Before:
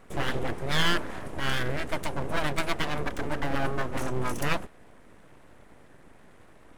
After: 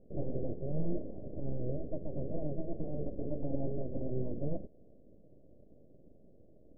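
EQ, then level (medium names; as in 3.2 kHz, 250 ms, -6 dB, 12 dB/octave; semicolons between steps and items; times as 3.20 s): elliptic low-pass 600 Hz, stop band 50 dB; -4.0 dB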